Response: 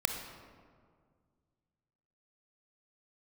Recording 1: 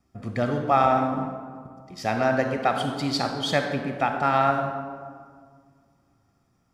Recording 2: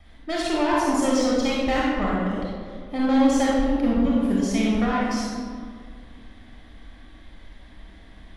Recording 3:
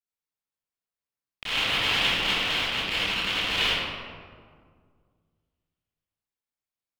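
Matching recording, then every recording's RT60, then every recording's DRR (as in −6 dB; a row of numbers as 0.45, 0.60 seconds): 1; 1.9, 1.9, 1.9 seconds; 5.0, −5.0, −13.0 decibels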